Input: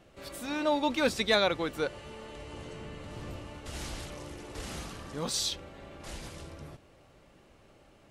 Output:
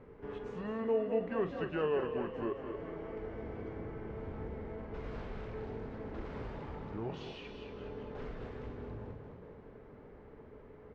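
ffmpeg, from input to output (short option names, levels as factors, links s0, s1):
-filter_complex "[0:a]asplit=2[s0][s1];[s1]adelay=33,volume=0.251[s2];[s0][s2]amix=inputs=2:normalize=0,asplit=2[s3][s4];[s4]aecho=0:1:170:0.266[s5];[s3][s5]amix=inputs=2:normalize=0,acompressor=threshold=0.00447:ratio=2,lowpass=2000,equalizer=f=590:w=6.5:g=8,asetrate=32667,aresample=44100,asplit=2[s6][s7];[s7]asplit=7[s8][s9][s10][s11][s12][s13][s14];[s8]adelay=208,afreqshift=35,volume=0.316[s15];[s9]adelay=416,afreqshift=70,volume=0.193[s16];[s10]adelay=624,afreqshift=105,volume=0.117[s17];[s11]adelay=832,afreqshift=140,volume=0.0716[s18];[s12]adelay=1040,afreqshift=175,volume=0.0437[s19];[s13]adelay=1248,afreqshift=210,volume=0.0266[s20];[s14]adelay=1456,afreqshift=245,volume=0.0162[s21];[s15][s16][s17][s18][s19][s20][s21]amix=inputs=7:normalize=0[s22];[s6][s22]amix=inputs=2:normalize=0,volume=1.41"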